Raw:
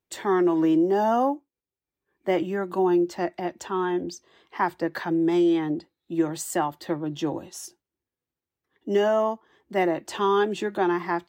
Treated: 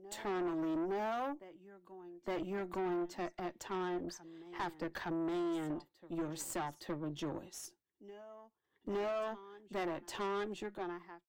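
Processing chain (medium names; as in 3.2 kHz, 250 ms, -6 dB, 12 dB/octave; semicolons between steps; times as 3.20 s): fade out at the end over 1.18 s; compression 1.5:1, threshold -28 dBFS, peak gain reduction 4 dB; on a send: reverse echo 865 ms -18.5 dB; on the sum: valve stage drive 27 dB, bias 0.65; trim -6 dB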